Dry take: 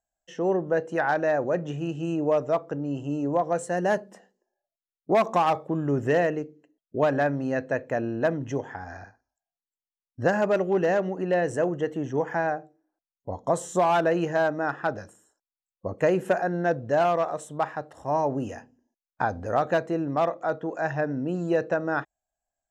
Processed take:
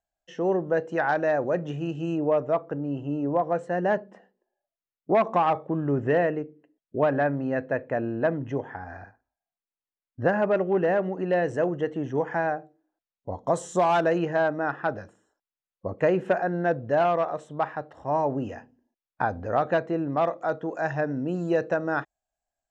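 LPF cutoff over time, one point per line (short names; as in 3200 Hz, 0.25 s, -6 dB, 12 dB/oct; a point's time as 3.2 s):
5300 Hz
from 2.18 s 2600 Hz
from 11.13 s 4300 Hz
from 13.48 s 7900 Hz
from 14.18 s 3700 Hz
from 20.25 s 7700 Hz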